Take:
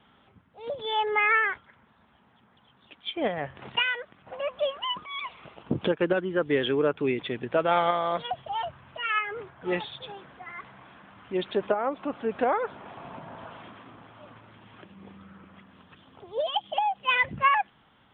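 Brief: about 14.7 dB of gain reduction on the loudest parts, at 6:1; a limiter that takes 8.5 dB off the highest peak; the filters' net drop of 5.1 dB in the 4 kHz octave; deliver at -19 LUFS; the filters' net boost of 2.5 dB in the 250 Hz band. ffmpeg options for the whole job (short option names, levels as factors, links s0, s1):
-af "equalizer=f=250:t=o:g=3.5,equalizer=f=4000:t=o:g=-8,acompressor=threshold=0.0178:ratio=6,volume=13.3,alimiter=limit=0.398:level=0:latency=1"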